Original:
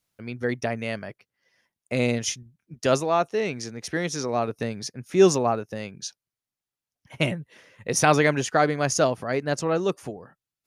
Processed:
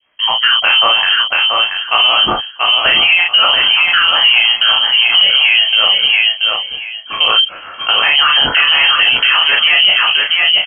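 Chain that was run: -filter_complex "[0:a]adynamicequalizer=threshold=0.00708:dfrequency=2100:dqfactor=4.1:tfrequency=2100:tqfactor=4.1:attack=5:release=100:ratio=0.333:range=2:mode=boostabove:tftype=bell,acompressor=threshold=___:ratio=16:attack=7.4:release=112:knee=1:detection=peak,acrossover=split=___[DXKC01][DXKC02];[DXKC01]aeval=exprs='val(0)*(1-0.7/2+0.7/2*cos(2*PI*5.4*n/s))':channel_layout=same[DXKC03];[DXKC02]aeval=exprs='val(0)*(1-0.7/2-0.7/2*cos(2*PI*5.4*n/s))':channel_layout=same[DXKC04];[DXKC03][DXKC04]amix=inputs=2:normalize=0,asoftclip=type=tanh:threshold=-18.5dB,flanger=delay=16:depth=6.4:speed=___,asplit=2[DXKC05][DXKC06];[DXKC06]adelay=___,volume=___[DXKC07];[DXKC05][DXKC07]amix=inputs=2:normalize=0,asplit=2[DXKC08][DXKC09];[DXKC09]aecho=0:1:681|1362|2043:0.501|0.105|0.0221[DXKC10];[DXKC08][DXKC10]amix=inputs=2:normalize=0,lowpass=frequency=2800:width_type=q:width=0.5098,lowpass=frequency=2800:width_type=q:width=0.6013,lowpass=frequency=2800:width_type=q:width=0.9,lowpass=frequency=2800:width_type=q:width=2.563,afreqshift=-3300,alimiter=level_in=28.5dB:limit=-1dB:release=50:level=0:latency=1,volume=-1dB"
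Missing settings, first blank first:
-23dB, 650, 0.66, 36, -4dB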